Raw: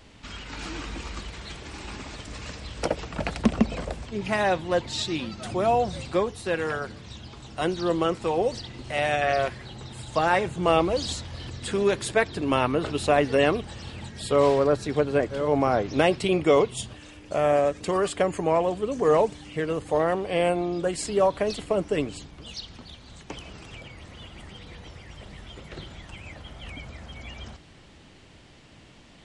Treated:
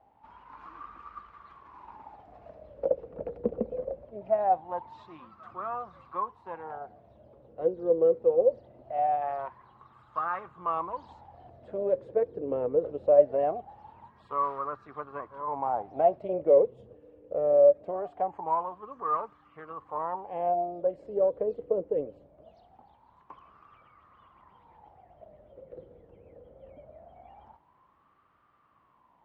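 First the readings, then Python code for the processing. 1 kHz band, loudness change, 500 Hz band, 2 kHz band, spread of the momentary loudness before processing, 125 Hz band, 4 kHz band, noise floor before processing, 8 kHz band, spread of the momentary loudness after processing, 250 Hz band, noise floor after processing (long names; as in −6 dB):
−3.0 dB, −3.5 dB, −3.0 dB, −20.0 dB, 20 LU, −18.0 dB, below −30 dB, −51 dBFS, below −40 dB, 19 LU, −14.0 dB, −65 dBFS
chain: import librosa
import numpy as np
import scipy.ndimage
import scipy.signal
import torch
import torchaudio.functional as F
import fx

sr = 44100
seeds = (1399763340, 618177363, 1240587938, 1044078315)

y = fx.cheby_harmonics(x, sr, harmonics=(8,), levels_db=(-28,), full_scale_db=-5.5)
y = fx.riaa(y, sr, side='playback')
y = fx.wah_lfo(y, sr, hz=0.22, low_hz=480.0, high_hz=1200.0, q=12.0)
y = y * 10.0 ** (5.5 / 20.0)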